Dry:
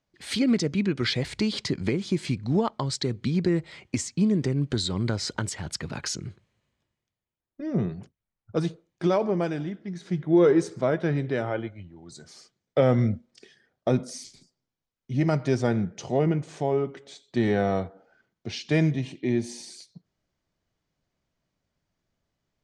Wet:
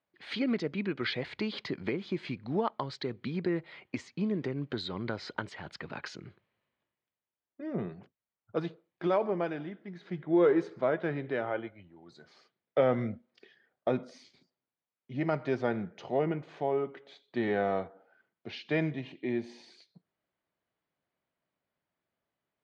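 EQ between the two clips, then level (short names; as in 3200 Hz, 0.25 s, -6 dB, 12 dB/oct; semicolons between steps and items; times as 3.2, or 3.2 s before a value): HPF 550 Hz 6 dB/oct; air absorption 290 m; bell 5600 Hz -5 dB 0.24 oct; 0.0 dB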